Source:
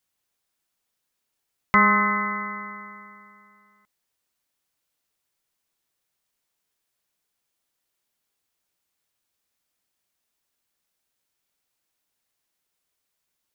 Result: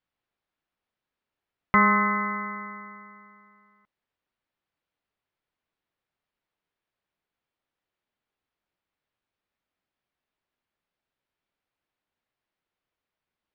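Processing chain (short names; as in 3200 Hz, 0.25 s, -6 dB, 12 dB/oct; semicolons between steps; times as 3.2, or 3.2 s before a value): air absorption 320 m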